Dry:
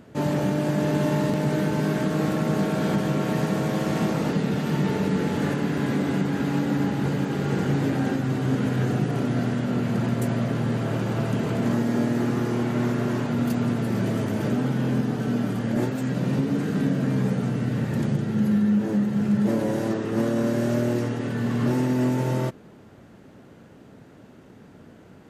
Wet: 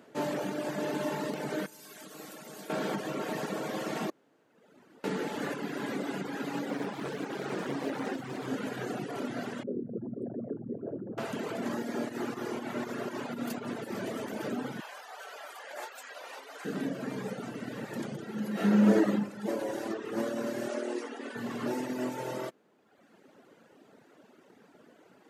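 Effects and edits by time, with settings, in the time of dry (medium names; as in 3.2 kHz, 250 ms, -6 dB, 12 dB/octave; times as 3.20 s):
1.66–2.70 s: pre-emphasis filter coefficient 0.8
4.10–5.04 s: room tone
6.70–8.47 s: loudspeaker Doppler distortion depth 0.42 ms
9.63–11.18 s: resonances exaggerated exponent 3
12.09–13.94 s: volume shaper 120 bpm, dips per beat 2, -5 dB, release 121 ms
14.80–16.65 s: high-pass 650 Hz 24 dB/octave
18.52–19.11 s: reverb throw, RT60 0.99 s, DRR -10.5 dB
20.68–21.36 s: brick-wall FIR band-pass 220–11000 Hz
whole clip: high-pass 320 Hz 12 dB/octave; reverb removal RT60 1.2 s; trim -3 dB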